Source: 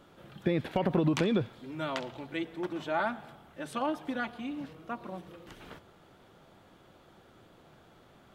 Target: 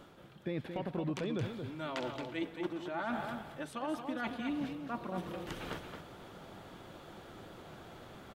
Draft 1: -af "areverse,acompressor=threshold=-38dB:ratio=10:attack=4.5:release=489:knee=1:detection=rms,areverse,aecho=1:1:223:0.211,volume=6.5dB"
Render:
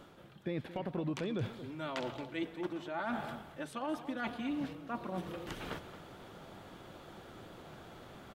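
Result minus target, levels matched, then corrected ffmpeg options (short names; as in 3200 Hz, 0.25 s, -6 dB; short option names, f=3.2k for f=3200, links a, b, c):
echo-to-direct -6.5 dB
-af "areverse,acompressor=threshold=-38dB:ratio=10:attack=4.5:release=489:knee=1:detection=rms,areverse,aecho=1:1:223:0.447,volume=6.5dB"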